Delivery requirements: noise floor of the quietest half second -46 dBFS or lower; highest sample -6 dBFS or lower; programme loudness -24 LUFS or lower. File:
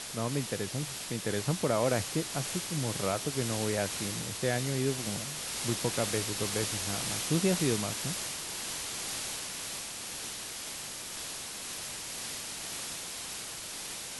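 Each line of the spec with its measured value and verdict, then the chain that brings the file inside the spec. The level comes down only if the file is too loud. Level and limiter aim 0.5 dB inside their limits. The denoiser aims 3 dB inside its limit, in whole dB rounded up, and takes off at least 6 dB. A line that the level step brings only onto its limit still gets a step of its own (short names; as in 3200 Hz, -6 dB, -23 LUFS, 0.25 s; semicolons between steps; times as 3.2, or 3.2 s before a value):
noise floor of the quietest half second -41 dBFS: fail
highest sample -14.5 dBFS: OK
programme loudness -32.5 LUFS: OK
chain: denoiser 8 dB, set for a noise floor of -41 dBFS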